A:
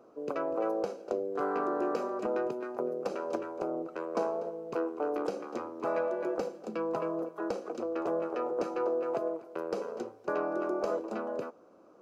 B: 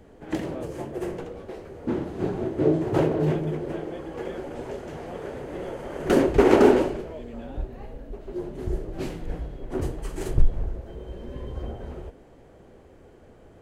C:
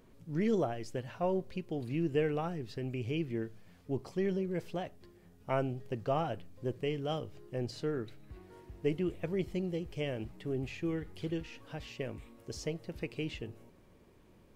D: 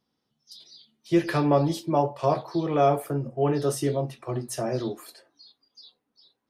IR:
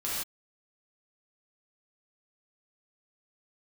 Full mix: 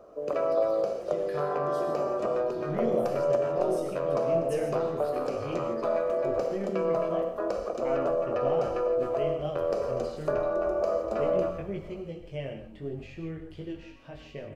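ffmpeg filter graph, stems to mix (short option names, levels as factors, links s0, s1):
-filter_complex "[0:a]aecho=1:1:1.7:0.36,acompressor=threshold=0.0282:ratio=6,volume=1.06,asplit=2[s0][s1];[s1]volume=0.422[s2];[1:a]acompressor=threshold=0.0447:ratio=6,volume=0.15[s3];[2:a]highshelf=f=6300:g=-11,flanger=delay=19:depth=3.6:speed=0.73,adelay=2350,volume=0.794,asplit=2[s4][s5];[s5]volume=0.355[s6];[3:a]acompressor=threshold=0.0562:ratio=6,volume=0.141,asplit=2[s7][s8];[s8]volume=0.596[s9];[4:a]atrim=start_sample=2205[s10];[s2][s6][s9]amix=inputs=3:normalize=0[s11];[s11][s10]afir=irnorm=-1:irlink=0[s12];[s0][s3][s4][s7][s12]amix=inputs=5:normalize=0,equalizer=f=600:t=o:w=0.29:g=7"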